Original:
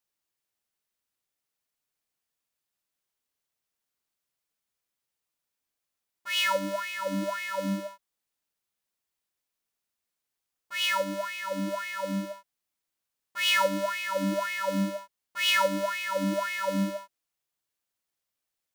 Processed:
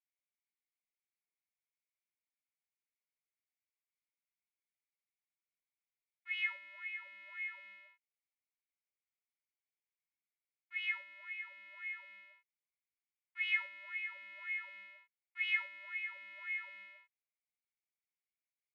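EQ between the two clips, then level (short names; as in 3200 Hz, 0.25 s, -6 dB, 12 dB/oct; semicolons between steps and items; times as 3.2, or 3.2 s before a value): band-pass 2200 Hz, Q 8.7; air absorption 470 m; differentiator; +13.5 dB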